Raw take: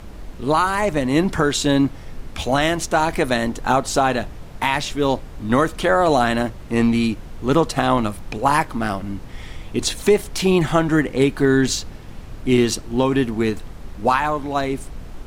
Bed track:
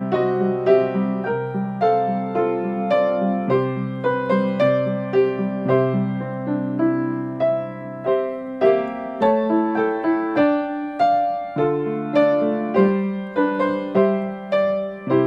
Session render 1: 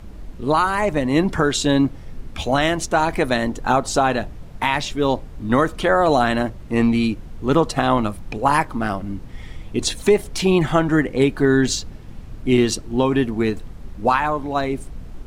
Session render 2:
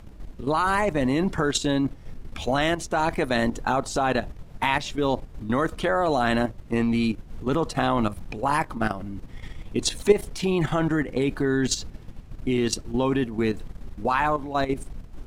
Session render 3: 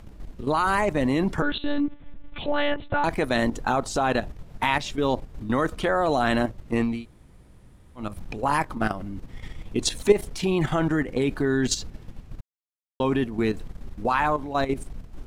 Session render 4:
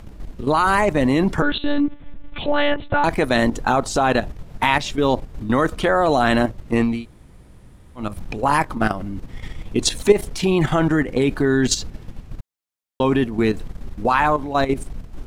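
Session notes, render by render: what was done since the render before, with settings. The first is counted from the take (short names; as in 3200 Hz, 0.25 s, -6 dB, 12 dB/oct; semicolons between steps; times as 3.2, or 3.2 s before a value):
denoiser 6 dB, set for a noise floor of -36 dBFS
level quantiser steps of 11 dB
1.42–3.04 monotone LPC vocoder at 8 kHz 290 Hz; 6.94–8.07 room tone, crossfade 0.24 s; 12.41–13 mute
gain +5.5 dB; limiter -2 dBFS, peak gain reduction 2 dB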